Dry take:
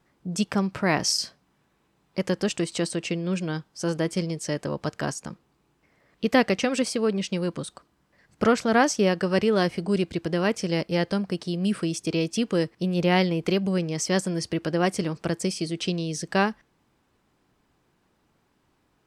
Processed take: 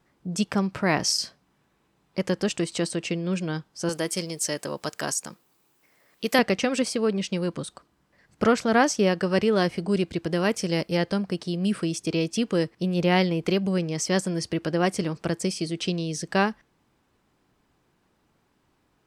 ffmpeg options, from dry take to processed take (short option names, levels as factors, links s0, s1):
-filter_complex "[0:a]asettb=1/sr,asplit=3[s0][s1][s2];[s0]atrim=end=3.894[s3];[s1]atrim=start=3.89:end=6.39,asetpts=PTS-STARTPTS,afade=t=in:d=0.004:c=qsin,afade=t=out:st=2.496:d=0.004:c=qsin,aemphasis=mode=production:type=bsi[s4];[s2]atrim=start=6.386[s5];[s3][s4]acrossfade=d=0.004:c1=hsin:c2=qsin[s6];[s6][s5]acrossfade=d=0.004:c1=qsin:c2=hsin,asettb=1/sr,asplit=3[s7][s8][s9];[s7]atrim=end=10.314[s10];[s8]atrim=start=10.31:end=10.97,asetpts=PTS-STARTPTS,afade=t=in:d=0.004:c=qsin,afade=t=out:st=0.656:d=0.004:c=qsin,highshelf=f=9000:g=10[s11];[s9]atrim=start=10.966[s12];[s10][s11]acrossfade=d=0.004:c1=hsin:c2=qsin[s13];[s13][s12]acrossfade=d=0.004:c1=qsin:c2=hsin"